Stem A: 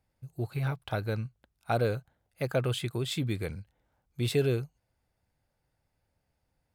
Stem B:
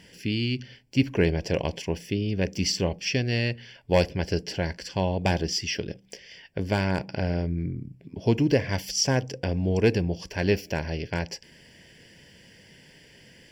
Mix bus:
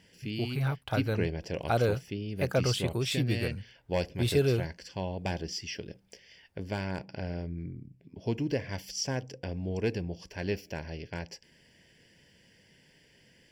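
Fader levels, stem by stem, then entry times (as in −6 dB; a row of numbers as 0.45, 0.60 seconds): +1.0, −9.0 decibels; 0.00, 0.00 seconds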